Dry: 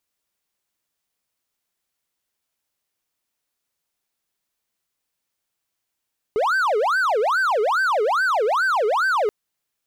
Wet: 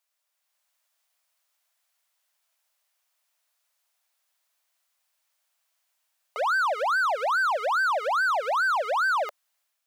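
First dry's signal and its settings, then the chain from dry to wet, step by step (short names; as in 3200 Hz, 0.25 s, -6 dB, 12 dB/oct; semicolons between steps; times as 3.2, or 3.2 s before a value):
siren wail 413–1560 Hz 2.4/s triangle -15 dBFS 2.93 s
AGC gain up to 5 dB; elliptic high-pass 590 Hz, stop band 40 dB; limiter -21 dBFS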